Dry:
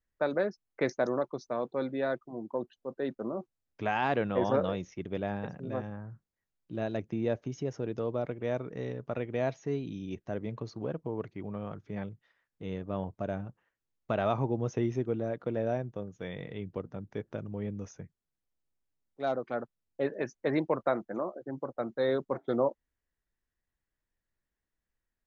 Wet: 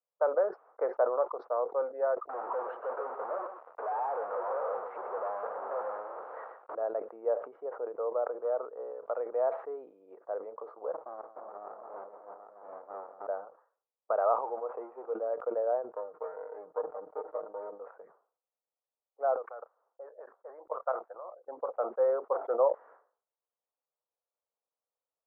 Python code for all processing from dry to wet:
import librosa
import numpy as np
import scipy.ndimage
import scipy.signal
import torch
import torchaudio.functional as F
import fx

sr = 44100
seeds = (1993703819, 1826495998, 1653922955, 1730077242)

y = fx.chain(x, sr, fx.clip_1bit(),
    fx.echo_single(ms=122, db=-8.5), at=(2.29, 6.75))
y = fx.chain(y, sr, fx.peak_eq(hz=2100.0, db=-11.5, octaves=0.28),
    fx.clip_hard(threshold_db=-24.0), at=(8.25, 8.94))
y = fx.chain(y, sr, fx.echo_multitap(ms=(169, 306, 594, 752), db=(-13.5, -5.0, -10.0, -7.0)),
    fx.running_max(window=65), at=(10.92, 13.27))
y = fx.chain(y, sr, fx.law_mismatch(coded='mu'),
    fx.cheby_ripple(hz=3400.0, ripple_db=6), at=(14.41, 15.13))
y = fx.chain(y, sr, fx.lower_of_two(delay_ms=0.34),
    fx.lowpass(hz=2100.0, slope=24),
    fx.comb(ms=6.5, depth=0.91), at=(15.96, 17.8))
y = fx.chain(y, sr, fx.highpass(hz=810.0, slope=6),
    fx.level_steps(step_db=15), at=(19.36, 21.48))
y = fx.env_lowpass(y, sr, base_hz=980.0, full_db=-28.5)
y = scipy.signal.sosfilt(scipy.signal.ellip(3, 1.0, 70, [480.0, 1300.0], 'bandpass', fs=sr, output='sos'), y)
y = fx.sustainer(y, sr, db_per_s=130.0)
y = y * 10.0 ** (3.5 / 20.0)